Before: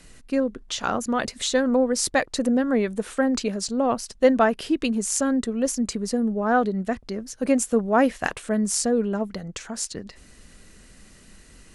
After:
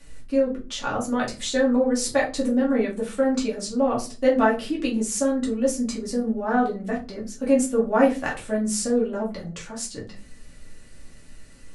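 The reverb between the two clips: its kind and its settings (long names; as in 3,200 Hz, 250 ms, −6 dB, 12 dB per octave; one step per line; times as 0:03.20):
rectangular room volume 140 cubic metres, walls furnished, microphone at 2.4 metres
level −7 dB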